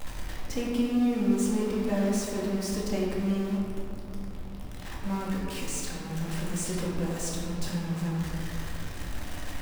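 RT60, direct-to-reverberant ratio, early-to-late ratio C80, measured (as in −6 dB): 2.5 s, −4.5 dB, 1.0 dB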